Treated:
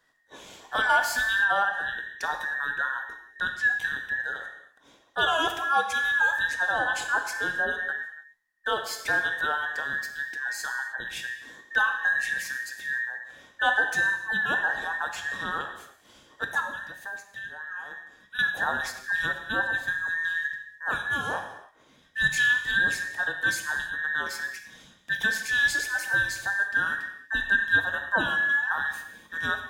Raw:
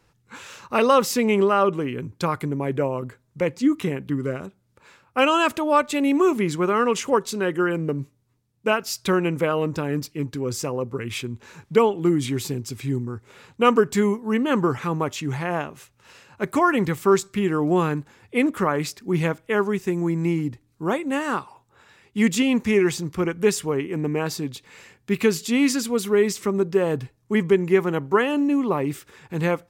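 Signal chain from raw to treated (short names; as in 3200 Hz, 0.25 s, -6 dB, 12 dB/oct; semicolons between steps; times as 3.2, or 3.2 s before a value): band inversion scrambler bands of 2000 Hz; 16.6–18.39 compressor 5:1, threshold -32 dBFS, peak gain reduction 17.5 dB; non-linear reverb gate 0.34 s falling, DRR 4.5 dB; gain -6.5 dB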